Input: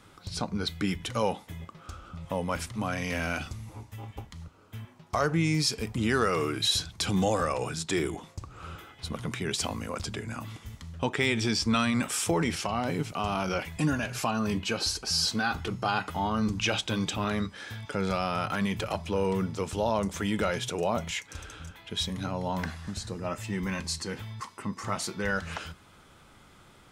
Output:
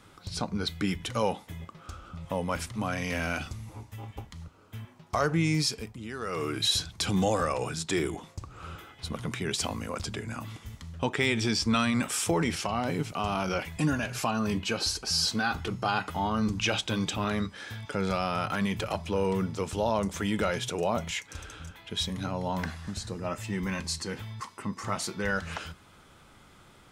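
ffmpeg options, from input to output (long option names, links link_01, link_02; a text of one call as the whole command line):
ffmpeg -i in.wav -filter_complex "[0:a]asplit=3[link_01][link_02][link_03];[link_01]atrim=end=5.98,asetpts=PTS-STARTPTS,afade=type=out:start_time=5.6:duration=0.38:silence=0.237137[link_04];[link_02]atrim=start=5.98:end=6.19,asetpts=PTS-STARTPTS,volume=-12.5dB[link_05];[link_03]atrim=start=6.19,asetpts=PTS-STARTPTS,afade=type=in:duration=0.38:silence=0.237137[link_06];[link_04][link_05][link_06]concat=n=3:v=0:a=1" out.wav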